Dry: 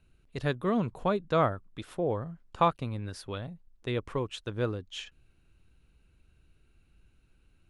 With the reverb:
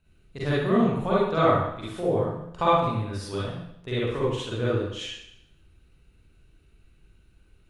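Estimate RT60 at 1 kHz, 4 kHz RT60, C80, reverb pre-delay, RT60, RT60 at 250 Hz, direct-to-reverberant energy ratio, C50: 0.75 s, 0.75 s, 3.5 dB, 40 ms, 0.75 s, 0.75 s, -8.5 dB, -4.0 dB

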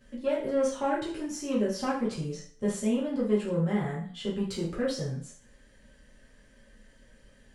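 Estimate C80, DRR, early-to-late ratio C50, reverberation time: 10.0 dB, -7.0 dB, 5.5 dB, 0.50 s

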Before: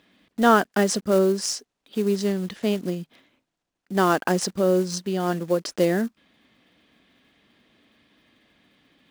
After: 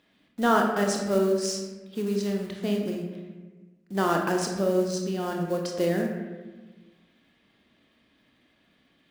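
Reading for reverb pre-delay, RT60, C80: 24 ms, 1.3 s, 6.0 dB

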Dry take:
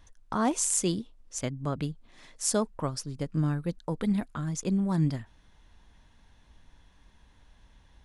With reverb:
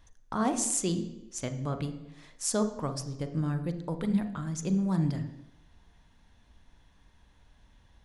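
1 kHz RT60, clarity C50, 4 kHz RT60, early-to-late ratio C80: 0.85 s, 10.5 dB, 0.90 s, 13.5 dB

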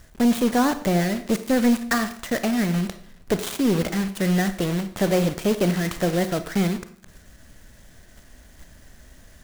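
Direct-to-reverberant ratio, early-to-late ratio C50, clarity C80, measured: 10.5 dB, 12.5 dB, 16.0 dB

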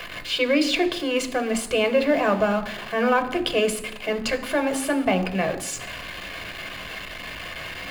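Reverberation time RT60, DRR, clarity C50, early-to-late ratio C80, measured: 0.85 s, 7.0 dB, 13.0 dB, 15.5 dB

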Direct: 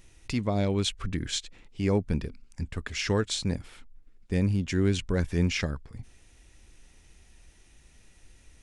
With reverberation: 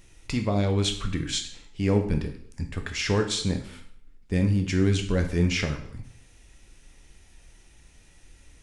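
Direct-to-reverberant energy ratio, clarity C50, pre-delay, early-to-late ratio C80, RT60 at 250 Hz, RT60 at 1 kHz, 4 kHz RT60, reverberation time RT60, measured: 4.5 dB, 9.5 dB, 6 ms, 13.0 dB, 0.60 s, 0.60 s, 0.55 s, 0.60 s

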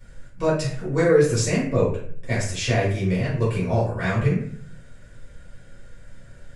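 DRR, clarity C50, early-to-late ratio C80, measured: -8.5 dB, 3.5 dB, 8.5 dB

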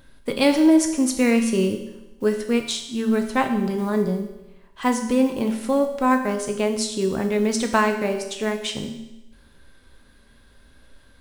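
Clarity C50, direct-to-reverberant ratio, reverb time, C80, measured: 8.0 dB, 4.5 dB, 1.0 s, 10.0 dB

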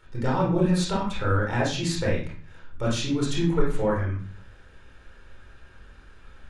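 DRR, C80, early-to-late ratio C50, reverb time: -4.5 dB, 8.5 dB, 3.5 dB, 0.45 s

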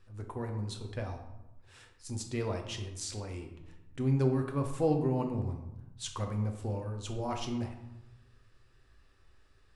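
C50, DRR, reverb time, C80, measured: 7.5 dB, 3.5 dB, 1.0 s, 10.0 dB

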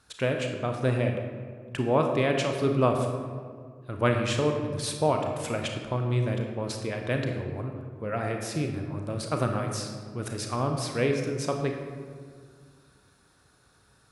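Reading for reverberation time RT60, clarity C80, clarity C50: 1.9 s, 6.0 dB, 4.5 dB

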